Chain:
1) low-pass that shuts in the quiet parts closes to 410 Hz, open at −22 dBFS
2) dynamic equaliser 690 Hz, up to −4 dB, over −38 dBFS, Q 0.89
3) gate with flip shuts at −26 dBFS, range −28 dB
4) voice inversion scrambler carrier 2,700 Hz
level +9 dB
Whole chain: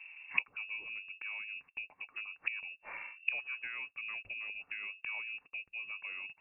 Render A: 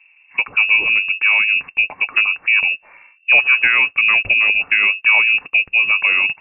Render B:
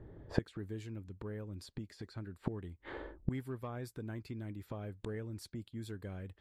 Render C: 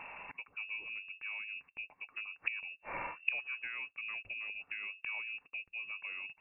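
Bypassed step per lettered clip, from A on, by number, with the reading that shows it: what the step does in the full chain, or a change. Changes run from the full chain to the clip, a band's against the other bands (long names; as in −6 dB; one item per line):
3, change in momentary loudness spread −1 LU
4, change in integrated loudness −4.0 LU
1, change in crest factor −2.0 dB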